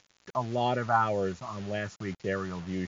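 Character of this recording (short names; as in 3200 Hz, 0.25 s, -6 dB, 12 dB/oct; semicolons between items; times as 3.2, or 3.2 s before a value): phasing stages 4, 1.9 Hz, lowest notch 460–1200 Hz; a quantiser's noise floor 8-bit, dither none; MP3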